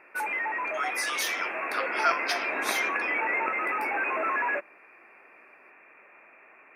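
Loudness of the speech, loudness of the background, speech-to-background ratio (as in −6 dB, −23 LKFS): −32.0 LKFS, −28.5 LKFS, −3.5 dB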